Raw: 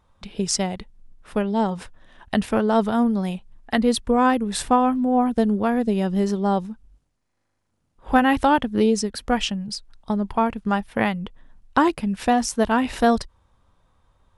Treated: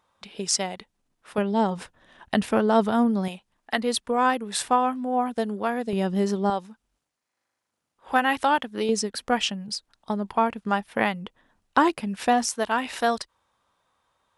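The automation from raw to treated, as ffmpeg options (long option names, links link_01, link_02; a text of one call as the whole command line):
ffmpeg -i in.wav -af "asetnsamples=nb_out_samples=441:pad=0,asendcmd='1.38 highpass f 160;3.28 highpass f 660;5.93 highpass f 200;6.5 highpass f 830;8.89 highpass f 330;12.49 highpass f 850',highpass=frequency=580:poles=1" out.wav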